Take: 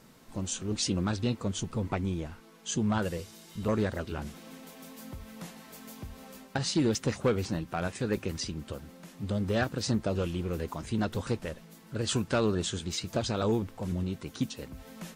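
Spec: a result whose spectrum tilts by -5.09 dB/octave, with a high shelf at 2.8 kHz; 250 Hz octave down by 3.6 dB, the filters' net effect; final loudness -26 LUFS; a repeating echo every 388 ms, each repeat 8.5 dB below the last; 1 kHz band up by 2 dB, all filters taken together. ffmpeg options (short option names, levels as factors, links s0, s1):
-af "equalizer=f=250:t=o:g=-5,equalizer=f=1000:t=o:g=3.5,highshelf=f=2800:g=-3,aecho=1:1:388|776|1164|1552:0.376|0.143|0.0543|0.0206,volume=2.24"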